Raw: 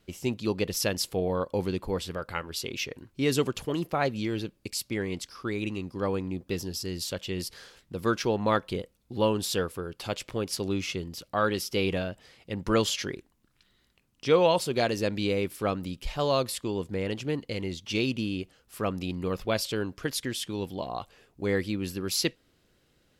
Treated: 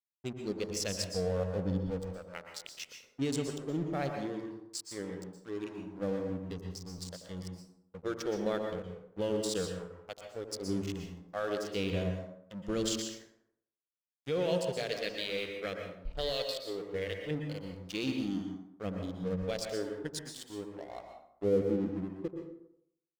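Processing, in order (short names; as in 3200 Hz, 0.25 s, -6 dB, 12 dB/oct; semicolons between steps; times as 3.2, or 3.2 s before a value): Wiener smoothing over 25 samples; spectral noise reduction 14 dB; 14.87–17.31 graphic EQ 125/250/500/1000/2000/4000/8000 Hz -7/-6/+3/-5/+11/+12/-10 dB; harmonic-percussive split percussive -7 dB; bell 1000 Hz -12 dB 0.51 oct; limiter -23.5 dBFS, peak gain reduction 10.5 dB; low-pass sweep 7800 Hz -> 480 Hz, 20.72–21.57; crossover distortion -47 dBFS; dark delay 86 ms, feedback 39%, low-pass 820 Hz, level -9 dB; reverb RT60 0.65 s, pre-delay 0.107 s, DRR 4 dB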